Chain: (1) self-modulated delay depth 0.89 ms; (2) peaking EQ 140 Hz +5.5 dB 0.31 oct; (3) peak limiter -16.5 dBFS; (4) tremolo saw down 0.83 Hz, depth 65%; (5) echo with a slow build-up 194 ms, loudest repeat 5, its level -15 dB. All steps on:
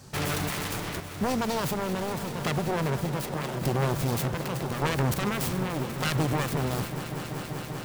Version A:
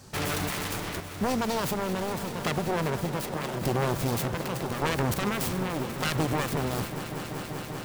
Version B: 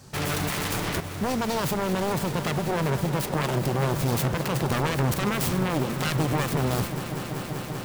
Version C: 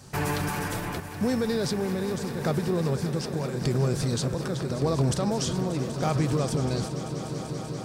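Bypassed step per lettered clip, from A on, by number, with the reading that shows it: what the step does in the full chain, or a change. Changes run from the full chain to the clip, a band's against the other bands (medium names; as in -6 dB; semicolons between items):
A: 2, 125 Hz band -2.5 dB; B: 4, momentary loudness spread change -2 LU; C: 1, 2 kHz band -4.5 dB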